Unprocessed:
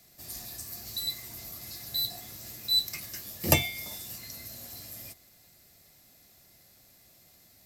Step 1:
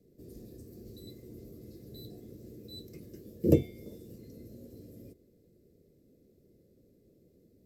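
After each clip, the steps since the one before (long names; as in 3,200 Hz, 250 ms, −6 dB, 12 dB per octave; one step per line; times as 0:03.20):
drawn EQ curve 110 Hz 0 dB, 470 Hz +11 dB, 770 Hz −24 dB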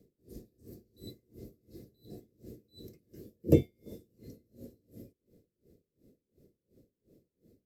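tremolo with a sine in dB 2.8 Hz, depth 28 dB
level +3 dB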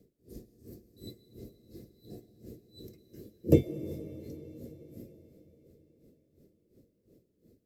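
convolution reverb RT60 4.6 s, pre-delay 80 ms, DRR 12 dB
level +1 dB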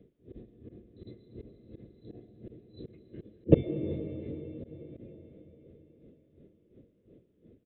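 downsampling to 8,000 Hz
volume swells 107 ms
level +5 dB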